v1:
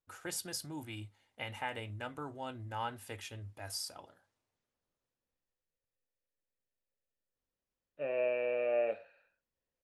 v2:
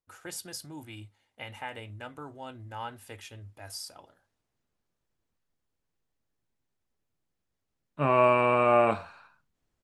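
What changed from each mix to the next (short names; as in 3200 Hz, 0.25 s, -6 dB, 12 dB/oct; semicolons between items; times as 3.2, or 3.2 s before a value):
second voice: remove vowel filter e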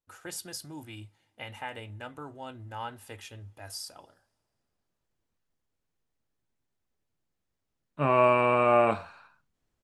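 first voice: add notch 2200 Hz, Q 24; reverb: on, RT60 2.6 s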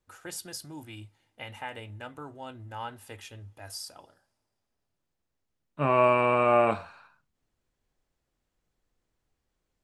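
second voice: entry -2.20 s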